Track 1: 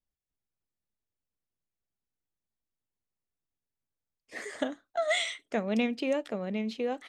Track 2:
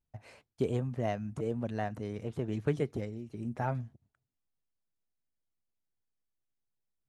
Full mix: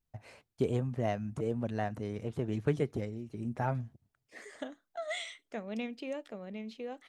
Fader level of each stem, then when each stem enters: -9.5, +0.5 dB; 0.00, 0.00 s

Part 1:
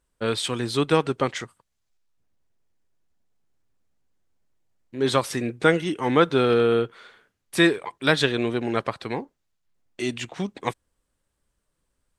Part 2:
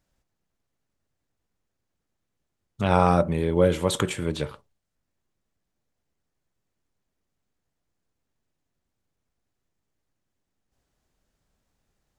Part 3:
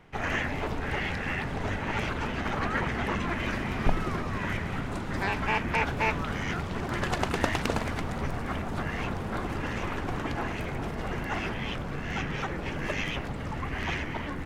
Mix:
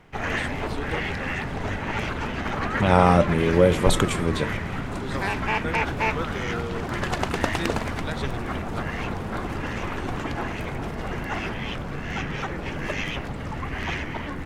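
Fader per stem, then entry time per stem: -14.5, +2.5, +2.5 dB; 0.00, 0.00, 0.00 s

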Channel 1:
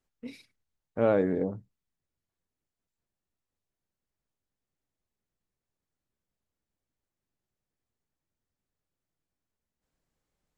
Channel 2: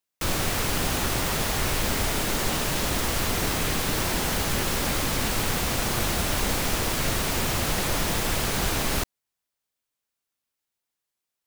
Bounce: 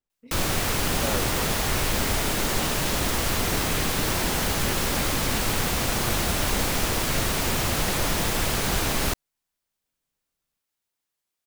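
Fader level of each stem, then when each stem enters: -8.5, +1.0 dB; 0.00, 0.10 s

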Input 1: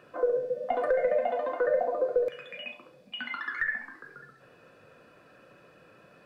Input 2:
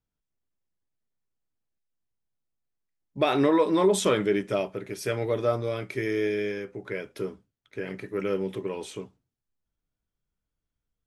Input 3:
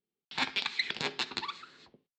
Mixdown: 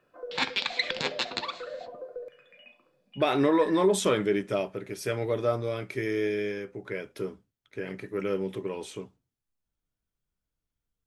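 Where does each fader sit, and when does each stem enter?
-13.5, -1.5, +3.0 dB; 0.00, 0.00, 0.00 s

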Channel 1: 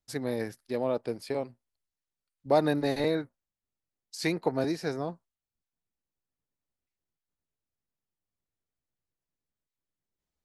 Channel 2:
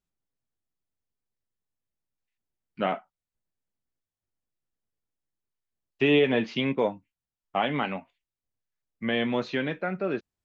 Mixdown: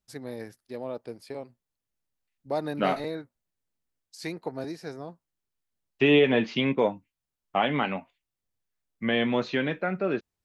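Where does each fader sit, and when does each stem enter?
-6.0, +1.5 dB; 0.00, 0.00 s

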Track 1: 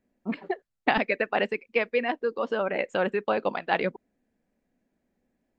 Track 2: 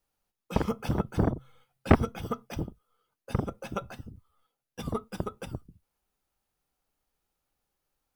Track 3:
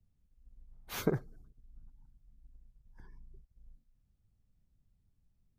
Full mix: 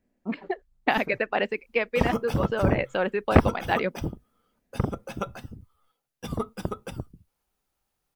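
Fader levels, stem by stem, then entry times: 0.0, +2.5, -10.5 dB; 0.00, 1.45, 0.00 s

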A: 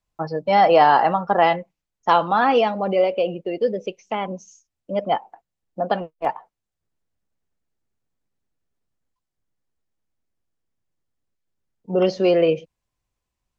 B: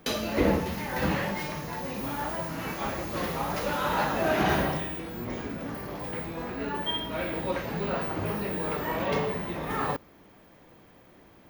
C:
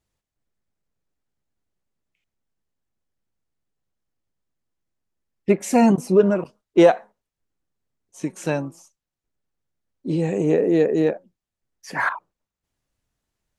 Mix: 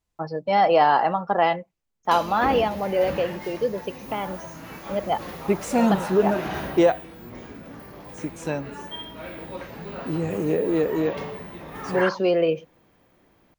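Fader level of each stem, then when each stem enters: -3.5, -5.5, -4.5 dB; 0.00, 2.05, 0.00 s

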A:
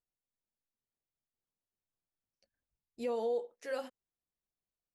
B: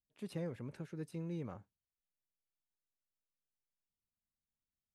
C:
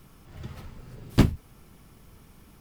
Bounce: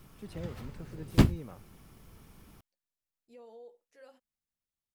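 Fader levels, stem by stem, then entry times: -17.5, -1.0, -2.5 dB; 0.30, 0.00, 0.00 s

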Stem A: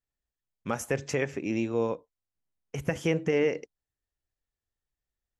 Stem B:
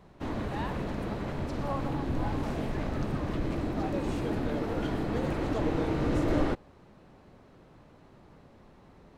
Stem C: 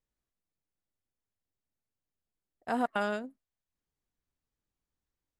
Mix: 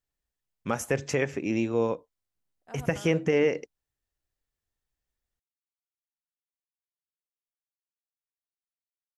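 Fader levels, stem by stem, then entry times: +2.0 dB, off, -15.5 dB; 0.00 s, off, 0.00 s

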